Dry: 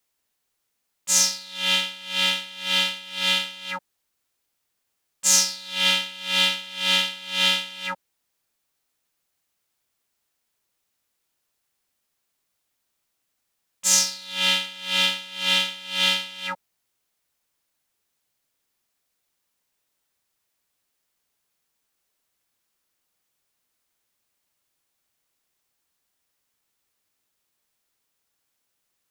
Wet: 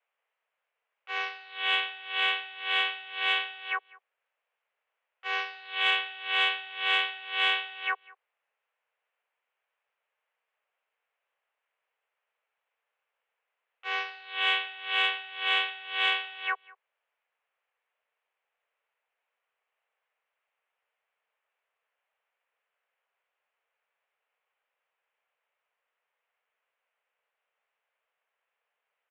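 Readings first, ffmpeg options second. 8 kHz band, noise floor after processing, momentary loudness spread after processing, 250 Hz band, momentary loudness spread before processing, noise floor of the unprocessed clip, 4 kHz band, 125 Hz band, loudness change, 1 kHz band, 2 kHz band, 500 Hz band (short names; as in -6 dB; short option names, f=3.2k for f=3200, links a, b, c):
under -35 dB, under -85 dBFS, 8 LU, under -15 dB, 13 LU, -77 dBFS, -8.5 dB, n/a, -7.0 dB, +0.5 dB, -1.0 dB, -6.0 dB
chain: -filter_complex "[0:a]asplit=2[a][b];[b]adelay=198.3,volume=-23dB,highshelf=f=4k:g=-4.46[c];[a][c]amix=inputs=2:normalize=0,highpass=f=240:t=q:w=0.5412,highpass=f=240:t=q:w=1.307,lowpass=f=2.6k:t=q:w=0.5176,lowpass=f=2.6k:t=q:w=0.7071,lowpass=f=2.6k:t=q:w=1.932,afreqshift=210,acontrast=58,volume=-5dB"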